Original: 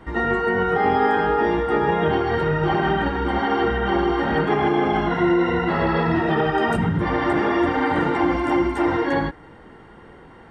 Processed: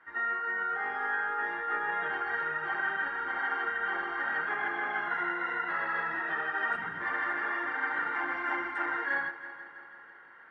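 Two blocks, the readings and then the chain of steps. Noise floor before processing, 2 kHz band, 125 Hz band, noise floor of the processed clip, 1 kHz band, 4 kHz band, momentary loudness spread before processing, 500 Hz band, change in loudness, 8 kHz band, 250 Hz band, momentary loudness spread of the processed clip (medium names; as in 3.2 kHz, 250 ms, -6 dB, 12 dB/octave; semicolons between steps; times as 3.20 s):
-45 dBFS, -2.5 dB, -32.5 dB, -51 dBFS, -11.0 dB, -15.0 dB, 3 LU, -22.0 dB, -10.5 dB, no reading, -25.5 dB, 2 LU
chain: band-pass filter 1.6 kHz, Q 4.1; on a send: multi-head delay 165 ms, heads first and second, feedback 58%, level -18 dB; on the sum: gain riding 0.5 s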